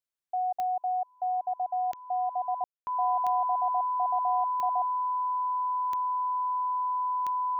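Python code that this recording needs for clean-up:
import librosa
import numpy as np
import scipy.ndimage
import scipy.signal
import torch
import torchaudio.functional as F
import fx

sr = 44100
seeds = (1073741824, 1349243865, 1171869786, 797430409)

y = fx.fix_declick_ar(x, sr, threshold=10.0)
y = fx.notch(y, sr, hz=1000.0, q=30.0)
y = fx.fix_ambience(y, sr, seeds[0], print_start_s=0.74, print_end_s=1.24, start_s=2.64, end_s=2.87)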